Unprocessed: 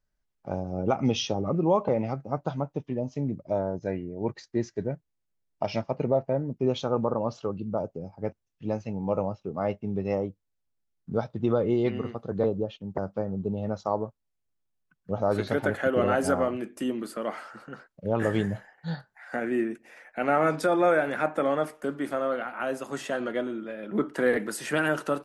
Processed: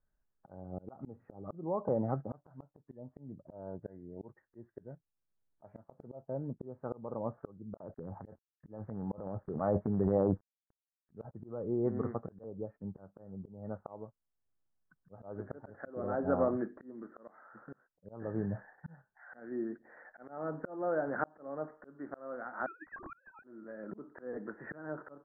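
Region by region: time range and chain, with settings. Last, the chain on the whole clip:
7.77–11.31 CVSD 64 kbps + transient shaper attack +1 dB, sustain +12 dB + bands offset in time highs, lows 30 ms, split 2600 Hz
22.66–23.44 sine-wave speech + HPF 1100 Hz 6 dB/oct + inverted band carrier 3000 Hz
whole clip: steep low-pass 1800 Hz 72 dB/oct; treble ducked by the level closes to 1100 Hz, closed at -22 dBFS; auto swell 0.686 s; gain -1.5 dB

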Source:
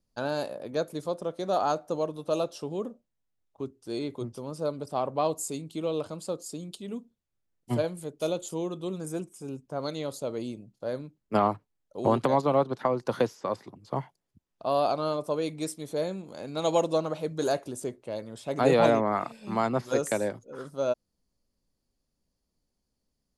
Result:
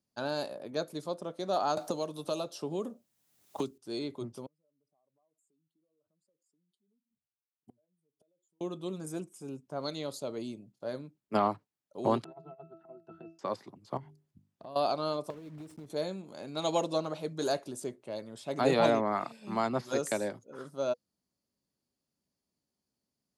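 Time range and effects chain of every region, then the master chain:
1.77–3.78 high shelf 7000 Hz +8 dB + three-band squash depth 100%
4.46–8.61 spectral contrast raised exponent 1.7 + compressor, threshold -34 dBFS + flipped gate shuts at -38 dBFS, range -36 dB
12.24–13.39 octave resonator E, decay 0.28 s + negative-ratio compressor -44 dBFS, ratio -0.5
13.97–14.76 low shelf 230 Hz +11.5 dB + notches 50/100/150/200/250/300/350/400 Hz + compressor 4:1, threshold -41 dBFS
15.3–15.9 block floating point 3-bit + tilt -3.5 dB/oct + compressor 10:1, threshold -37 dBFS
whole clip: HPF 120 Hz; notch 490 Hz, Q 12; dynamic EQ 4400 Hz, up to +5 dB, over -53 dBFS, Q 1.9; gain -3.5 dB

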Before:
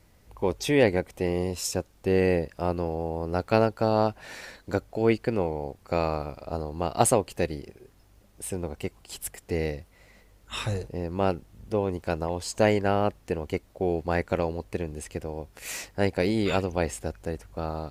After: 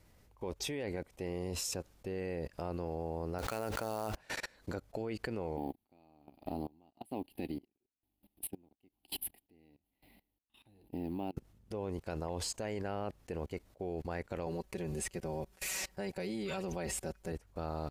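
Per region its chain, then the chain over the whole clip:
3.38–4.15 low shelf 470 Hz -7.5 dB + sample-rate reducer 11000 Hz, jitter 20% + sustainer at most 100 dB/s
5.57–11.37 G.711 law mismatch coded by A + EQ curve 130 Hz 0 dB, 290 Hz +14 dB, 500 Hz -4 dB, 800 Hz +8 dB, 1300 Hz -10 dB, 2900 Hz +7 dB, 4500 Hz +2 dB, 6600 Hz -20 dB, 11000 Hz +12 dB + dB-linear tremolo 1.1 Hz, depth 32 dB
14.46–17.32 high shelf 5200 Hz +3.5 dB + comb 5.3 ms, depth 83%
whole clip: limiter -16 dBFS; level quantiser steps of 21 dB; upward expander 1.5:1, over -52 dBFS; gain +5 dB

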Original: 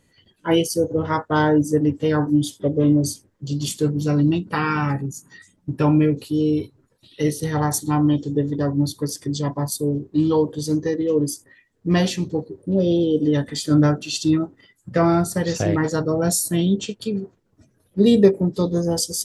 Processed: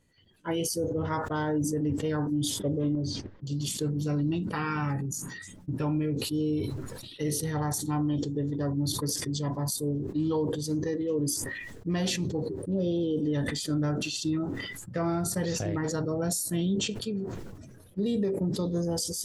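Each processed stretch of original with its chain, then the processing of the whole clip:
2.95–3.47 LPF 4300 Hz 24 dB/oct + gate -55 dBFS, range -17 dB + compressor, threshold -23 dBFS
whole clip: low shelf 89 Hz +6.5 dB; limiter -12 dBFS; sustainer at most 34 dB/s; gain -9 dB

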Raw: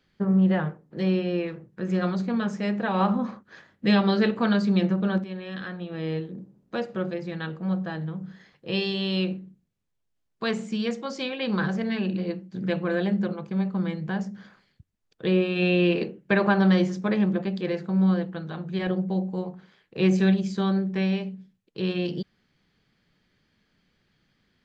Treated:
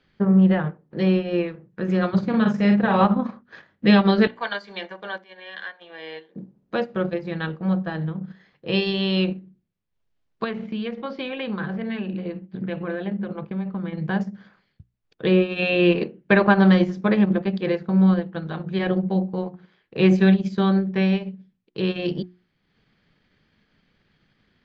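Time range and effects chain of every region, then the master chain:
2.13–3.05 bell 120 Hz +13.5 dB 0.72 oct + doubler 45 ms -4.5 dB
4.27–6.36 HPF 860 Hz + notch comb 1300 Hz
10.44–13.98 LPF 3800 Hz 24 dB/oct + compressor 3:1, threshold -31 dBFS
whole clip: LPF 4200 Hz 12 dB/oct; notches 60/120/180/240/300/360 Hz; transient shaper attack +1 dB, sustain -7 dB; gain +5 dB

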